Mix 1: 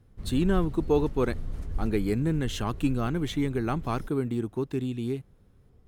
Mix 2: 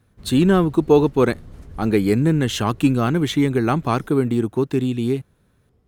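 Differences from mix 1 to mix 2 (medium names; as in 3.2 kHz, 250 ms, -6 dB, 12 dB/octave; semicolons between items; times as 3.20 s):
speech +10.0 dB; master: add high-pass 80 Hz 6 dB/octave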